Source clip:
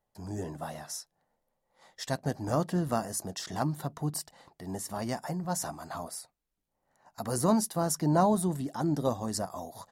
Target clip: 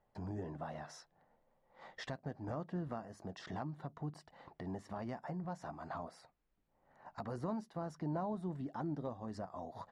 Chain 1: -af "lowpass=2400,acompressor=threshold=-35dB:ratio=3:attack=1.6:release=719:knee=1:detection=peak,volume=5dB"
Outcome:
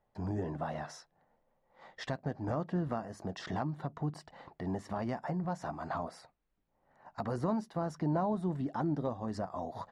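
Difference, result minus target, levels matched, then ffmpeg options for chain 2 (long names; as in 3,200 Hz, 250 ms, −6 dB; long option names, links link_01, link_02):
downward compressor: peak gain reduction −7 dB
-af "lowpass=2400,acompressor=threshold=-45.5dB:ratio=3:attack=1.6:release=719:knee=1:detection=peak,volume=5dB"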